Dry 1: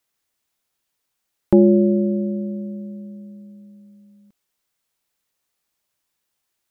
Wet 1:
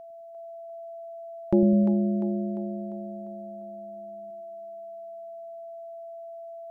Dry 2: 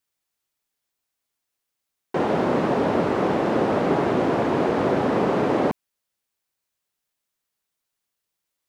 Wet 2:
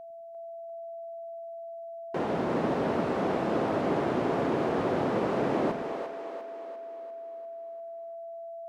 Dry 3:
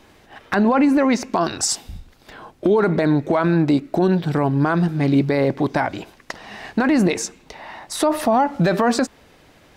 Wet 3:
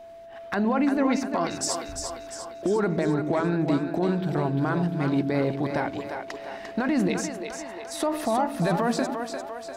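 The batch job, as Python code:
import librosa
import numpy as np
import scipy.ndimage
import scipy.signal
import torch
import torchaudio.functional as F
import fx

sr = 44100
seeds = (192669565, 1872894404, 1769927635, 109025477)

y = x + 10.0 ** (-34.0 / 20.0) * np.sin(2.0 * np.pi * 670.0 * np.arange(len(x)) / sr)
y = fx.echo_split(y, sr, split_hz=330.0, low_ms=102, high_ms=348, feedback_pct=52, wet_db=-6.0)
y = F.gain(torch.from_numpy(y), -8.0).numpy()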